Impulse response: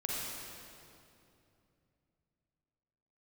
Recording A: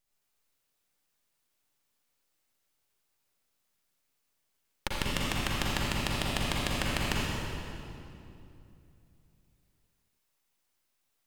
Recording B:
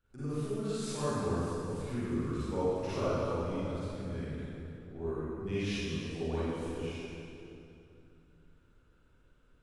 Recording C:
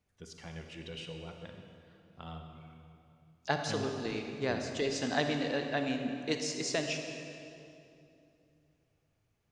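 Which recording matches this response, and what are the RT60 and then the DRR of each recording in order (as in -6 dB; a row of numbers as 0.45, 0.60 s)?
A; 2.7, 2.7, 2.8 s; -5.0, -13.5, 4.0 dB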